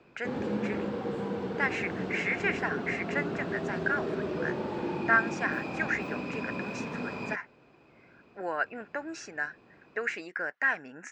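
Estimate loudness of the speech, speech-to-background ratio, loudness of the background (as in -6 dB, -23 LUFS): -32.5 LUFS, 2.0 dB, -34.5 LUFS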